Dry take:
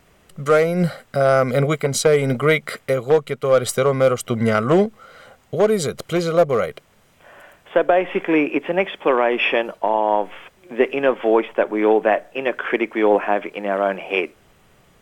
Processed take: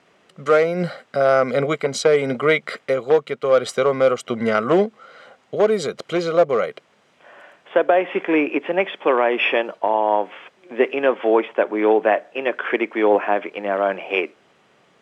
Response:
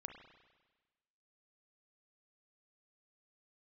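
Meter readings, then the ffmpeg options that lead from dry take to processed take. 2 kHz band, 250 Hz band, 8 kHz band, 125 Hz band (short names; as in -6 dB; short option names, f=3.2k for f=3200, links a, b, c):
0.0 dB, -2.0 dB, n/a, -8.5 dB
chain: -af "highpass=230,lowpass=5.4k"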